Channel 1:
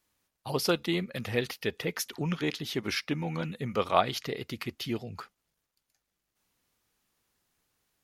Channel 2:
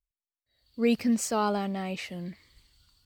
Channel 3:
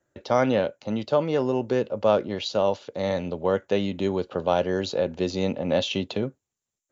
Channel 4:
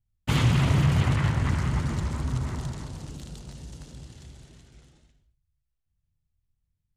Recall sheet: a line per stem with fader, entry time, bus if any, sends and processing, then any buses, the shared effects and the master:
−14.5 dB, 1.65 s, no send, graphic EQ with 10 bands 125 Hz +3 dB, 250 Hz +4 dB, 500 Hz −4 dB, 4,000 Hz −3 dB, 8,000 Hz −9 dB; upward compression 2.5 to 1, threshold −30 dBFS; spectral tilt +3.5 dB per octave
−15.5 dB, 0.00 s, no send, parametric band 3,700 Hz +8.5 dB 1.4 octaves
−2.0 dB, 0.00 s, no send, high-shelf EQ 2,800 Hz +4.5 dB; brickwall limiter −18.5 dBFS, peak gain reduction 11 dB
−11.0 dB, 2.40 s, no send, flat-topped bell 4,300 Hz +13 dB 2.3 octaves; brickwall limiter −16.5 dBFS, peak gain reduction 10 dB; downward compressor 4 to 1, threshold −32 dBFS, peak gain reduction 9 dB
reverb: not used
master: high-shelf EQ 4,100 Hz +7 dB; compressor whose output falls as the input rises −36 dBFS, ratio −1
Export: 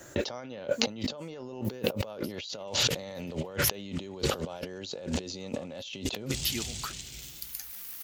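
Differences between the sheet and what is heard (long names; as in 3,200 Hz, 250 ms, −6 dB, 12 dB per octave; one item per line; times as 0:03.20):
stem 2: missing parametric band 3,700 Hz +8.5 dB 1.4 octaves
stem 3 −2.0 dB → +10.0 dB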